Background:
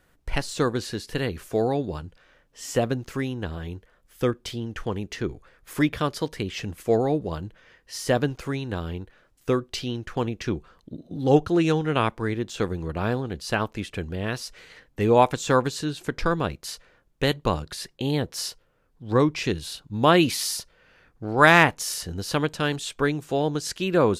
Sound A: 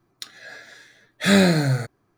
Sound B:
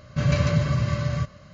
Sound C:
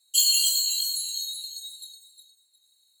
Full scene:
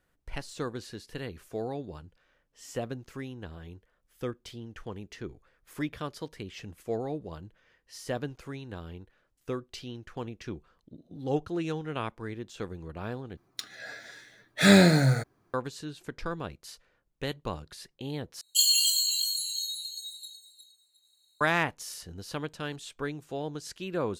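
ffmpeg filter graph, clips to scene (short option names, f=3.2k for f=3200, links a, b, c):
-filter_complex "[0:a]volume=-11dB[a];[3:a]highshelf=f=6.4k:g=-5[b];[a]asplit=3[c][d][e];[c]atrim=end=13.374[f];[1:a]atrim=end=2.17,asetpts=PTS-STARTPTS,volume=-1.5dB[g];[d]atrim=start=15.536:end=18.414[h];[b]atrim=end=3[i];[e]atrim=start=21.406[j];[f][g]acrossfade=d=0.004:c1=hsin:c2=hsin[k];[k][h]acrossfade=d=0.004:c1=hsin:c2=hsin[l];[l][i]acrossfade=d=0.004:c1=hsin:c2=hsin[m];[m][j]acrossfade=d=0.004:c1=hsin:c2=hsin"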